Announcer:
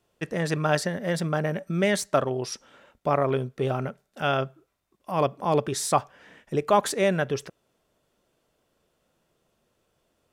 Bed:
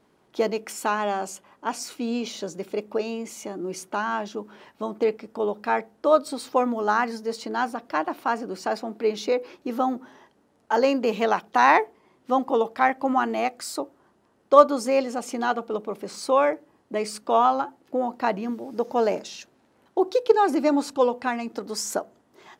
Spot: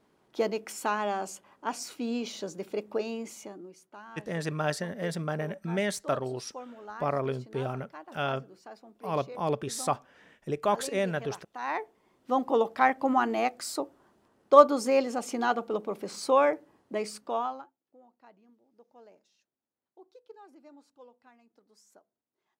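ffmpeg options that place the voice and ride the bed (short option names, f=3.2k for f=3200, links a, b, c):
-filter_complex "[0:a]adelay=3950,volume=-6dB[a];[1:a]volume=13.5dB,afade=t=out:st=3.26:d=0.47:silence=0.158489,afade=t=in:st=11.59:d=1:silence=0.125893,afade=t=out:st=16.73:d=1:silence=0.0316228[b];[a][b]amix=inputs=2:normalize=0"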